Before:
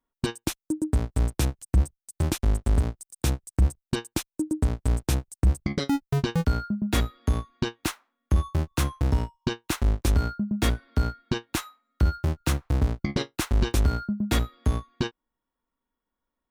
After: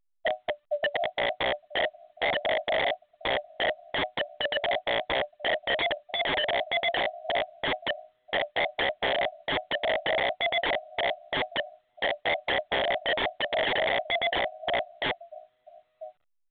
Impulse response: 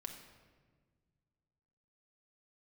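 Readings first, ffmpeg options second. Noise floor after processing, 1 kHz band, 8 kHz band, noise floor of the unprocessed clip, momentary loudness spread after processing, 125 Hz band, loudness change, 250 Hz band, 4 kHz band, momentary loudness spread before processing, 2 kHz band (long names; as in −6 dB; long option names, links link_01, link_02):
−72 dBFS, +7.0 dB, below −40 dB, below −85 dBFS, 6 LU, −24.5 dB, −1.0 dB, −14.5 dB, +8.0 dB, 7 LU, +10.5 dB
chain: -filter_complex "[0:a]agate=range=-33dB:threshold=-49dB:ratio=3:detection=peak,aresample=8000,aeval=exprs='clip(val(0),-1,0.015)':channel_layout=same,aresample=44100,crystalizer=i=4:c=0,asuperpass=centerf=390:order=20:qfactor=2.6,asplit=2[link_01][link_02];[link_02]adelay=991.3,volume=-27dB,highshelf=frequency=4000:gain=-22.3[link_03];[link_01][link_03]amix=inputs=2:normalize=0,dynaudnorm=framelen=660:gausssize=3:maxgain=14dB,asplit=2[link_04][link_05];[link_05]alimiter=limit=-21.5dB:level=0:latency=1:release=142,volume=2dB[link_06];[link_04][link_06]amix=inputs=2:normalize=0,afreqshift=270,aemphasis=mode=reproduction:type=75fm,aeval=exprs='(mod(10*val(0)+1,2)-1)/10':channel_layout=same" -ar 8000 -c:a pcm_alaw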